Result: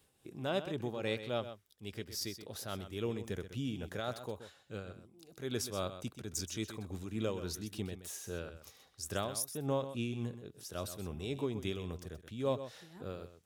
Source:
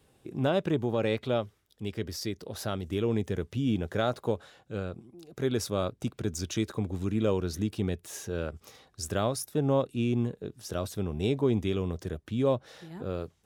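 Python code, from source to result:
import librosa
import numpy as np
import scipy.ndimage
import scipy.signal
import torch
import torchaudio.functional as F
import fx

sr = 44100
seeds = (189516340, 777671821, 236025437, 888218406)

y = fx.low_shelf(x, sr, hz=120.0, db=7.5)
y = y * (1.0 - 0.5 / 2.0 + 0.5 / 2.0 * np.cos(2.0 * np.pi * 3.6 * (np.arange(len(y)) / sr)))
y = fx.tilt_eq(y, sr, slope=2.0)
y = y + 10.0 ** (-11.5 / 20.0) * np.pad(y, (int(127 * sr / 1000.0), 0))[:len(y)]
y = y * 10.0 ** (-5.5 / 20.0)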